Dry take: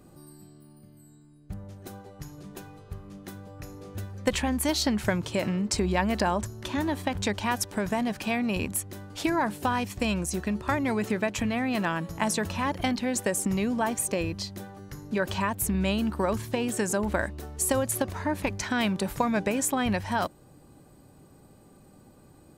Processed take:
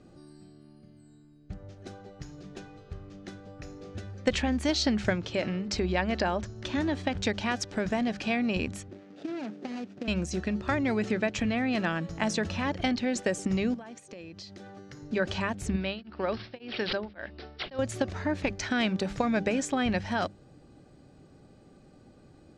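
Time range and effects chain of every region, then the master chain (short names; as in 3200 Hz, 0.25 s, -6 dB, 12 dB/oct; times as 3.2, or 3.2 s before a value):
5.13–6.56 LPF 6100 Hz + bell 150 Hz -4 dB 1.8 oct
8.88–10.08 median filter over 41 samples + HPF 180 Hz 24 dB/oct + compressor 4:1, threshold -31 dBFS
13.74–15.02 HPF 120 Hz + compressor 10:1, threshold -39 dBFS
15.76–17.79 low shelf 230 Hz -10 dB + careless resampling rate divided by 4×, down none, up filtered + beating tremolo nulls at 1.8 Hz
whole clip: LPF 6300 Hz 24 dB/oct; bell 990 Hz -9 dB 0.36 oct; notches 50/100/150/200 Hz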